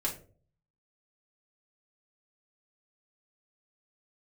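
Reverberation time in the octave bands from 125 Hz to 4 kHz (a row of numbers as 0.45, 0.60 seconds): 0.80, 0.55, 0.55, 0.35, 0.30, 0.25 seconds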